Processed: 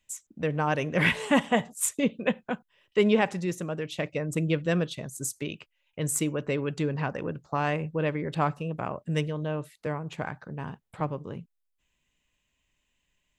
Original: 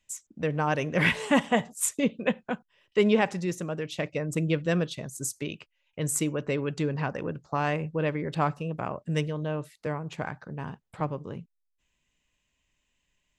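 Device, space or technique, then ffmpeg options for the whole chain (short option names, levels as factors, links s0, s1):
exciter from parts: -filter_complex "[0:a]asplit=2[s0][s1];[s1]highpass=f=4100:w=0.5412,highpass=f=4100:w=1.3066,asoftclip=type=tanh:threshold=0.0282,highpass=2800,volume=0.282[s2];[s0][s2]amix=inputs=2:normalize=0"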